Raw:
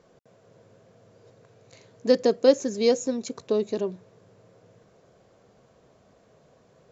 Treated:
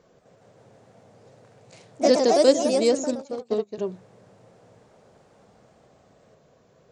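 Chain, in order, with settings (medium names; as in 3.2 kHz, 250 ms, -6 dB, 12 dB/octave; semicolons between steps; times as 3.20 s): 2.11–2.60 s: treble shelf 4.1 kHz +8 dB; ever faster or slower copies 185 ms, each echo +2 st, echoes 3; 3.15–3.78 s: upward expansion 2.5:1, over -34 dBFS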